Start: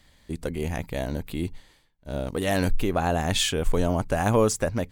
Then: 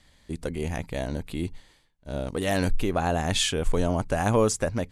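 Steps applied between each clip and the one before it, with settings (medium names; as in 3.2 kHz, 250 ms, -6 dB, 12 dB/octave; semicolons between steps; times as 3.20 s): elliptic low-pass 12 kHz, stop band 40 dB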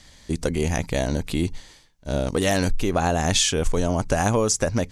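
peaking EQ 5.9 kHz +9 dB 0.72 oct; compression, threshold -25 dBFS, peak gain reduction 9 dB; trim +8 dB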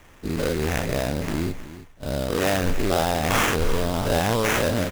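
every event in the spectrogram widened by 120 ms; sample-rate reducer 4.4 kHz, jitter 20%; delay 318 ms -15 dB; trim -5.5 dB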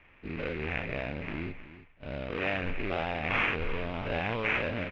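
four-pole ladder low-pass 2.7 kHz, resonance 65%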